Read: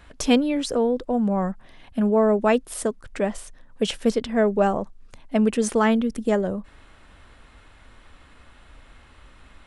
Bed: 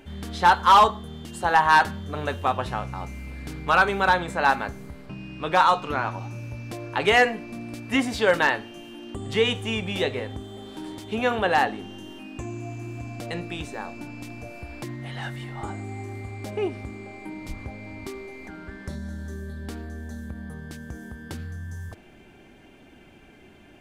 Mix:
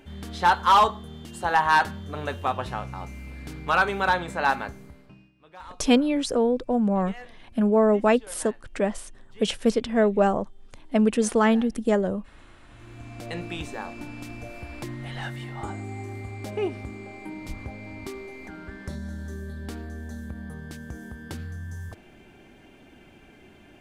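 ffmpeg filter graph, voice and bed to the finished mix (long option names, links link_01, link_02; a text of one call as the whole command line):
ffmpeg -i stem1.wav -i stem2.wav -filter_complex "[0:a]adelay=5600,volume=-0.5dB[link_01];[1:a]volume=23dB,afade=type=out:start_time=4.6:duration=0.72:silence=0.0668344,afade=type=in:start_time=12.68:duration=0.79:silence=0.0530884[link_02];[link_01][link_02]amix=inputs=2:normalize=0" out.wav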